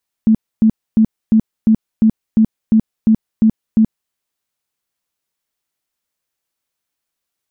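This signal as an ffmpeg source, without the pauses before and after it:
-f lavfi -i "aevalsrc='0.473*sin(2*PI*220*mod(t,0.35))*lt(mod(t,0.35),17/220)':d=3.85:s=44100"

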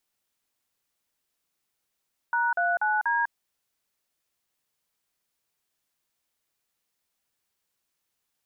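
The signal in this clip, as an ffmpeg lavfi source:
-f lavfi -i "aevalsrc='0.0596*clip(min(mod(t,0.242),0.199-mod(t,0.242))/0.002,0,1)*(eq(floor(t/0.242),0)*(sin(2*PI*941*mod(t,0.242))+sin(2*PI*1477*mod(t,0.242)))+eq(floor(t/0.242),1)*(sin(2*PI*697*mod(t,0.242))+sin(2*PI*1477*mod(t,0.242)))+eq(floor(t/0.242),2)*(sin(2*PI*852*mod(t,0.242))+sin(2*PI*1477*mod(t,0.242)))+eq(floor(t/0.242),3)*(sin(2*PI*941*mod(t,0.242))+sin(2*PI*1633*mod(t,0.242))))':d=0.968:s=44100"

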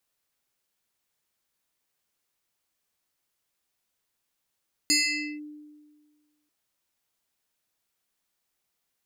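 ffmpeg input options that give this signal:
-f lavfi -i "aevalsrc='0.133*pow(10,-3*t/1.59)*sin(2*PI*299*t+3.4*clip(1-t/0.5,0,1)*sin(2*PI*7.82*299*t))':d=1.59:s=44100"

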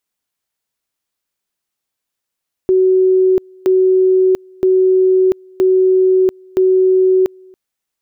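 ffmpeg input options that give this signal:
-f lavfi -i "aevalsrc='pow(10,(-8-30*gte(mod(t,0.97),0.69))/20)*sin(2*PI*374*t)':d=4.85:s=44100"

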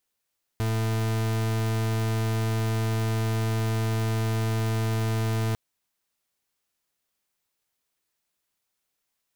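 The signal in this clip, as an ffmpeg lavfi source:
-f lavfi -i "aevalsrc='0.0531*(2*lt(mod(111*t,1),0.4)-1)':d=4.95:s=44100"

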